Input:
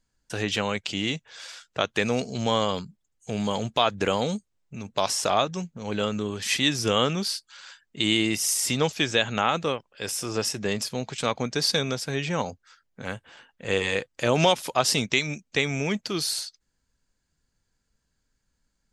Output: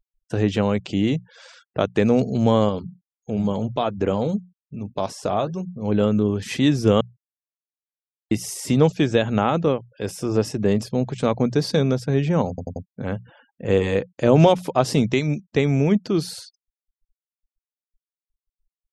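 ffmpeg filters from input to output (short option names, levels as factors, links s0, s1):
-filter_complex "[0:a]asettb=1/sr,asplit=3[s0][s1][s2];[s0]atrim=end=2.694[s3];[s1]atrim=start=2.69:end=5.83,asetpts=PTS-STARTPTS,afade=t=in:d=0.004:c=qsin,afade=t=out:st=3.136:d=0.004:c=qsin,flanger=delay=3.5:depth=7.6:regen=-71:speed=1.7:shape=sinusoidal[s4];[s2]atrim=start=5.826[s5];[s3][s4]acrossfade=d=0.004:c1=hsin:c2=qsin[s6];[s6][s5]acrossfade=d=0.004:c1=qsin:c2=hsin,asplit=7[s7][s8][s9][s10][s11][s12][s13];[s7]atrim=end=7.01,asetpts=PTS-STARTPTS,afade=t=out:st=7.006:d=0.004:c=hsin[s14];[s8]atrim=start=7.01:end=8.31,asetpts=PTS-STARTPTS,volume=0[s15];[s9]atrim=start=8.31:end=12.582,asetpts=PTS-STARTPTS,afade=t=in:d=0.004:c=hsin[s16];[s10]atrim=start=12.488:end=12.582[s17];[s11]atrim=start=12.488:end=12.582[s18];[s12]atrim=start=12.488:end=12.582[s19];[s13]atrim=start=12.848[s20];[s14][s15][s16]concat=n=3:v=0:a=1[s21];[s21][s17]acrossfade=d=0.004:c1=hsin:c2=hsin[s22];[s22][s18]acrossfade=d=0.004:c1=hsin:c2=hsin[s23];[s23][s19]acrossfade=d=0.004:c1=hsin:c2=hsin[s24];[s24][s20]acrossfade=d=0.004:c1=hsin:c2=hsin,bandreject=f=60:t=h:w=6,bandreject=f=120:t=h:w=6,bandreject=f=180:t=h:w=6,afftfilt=real='re*gte(hypot(re,im),0.00501)':imag='im*gte(hypot(re,im),0.00501)':win_size=1024:overlap=0.75,tiltshelf=f=930:g=9.5,volume=1.26"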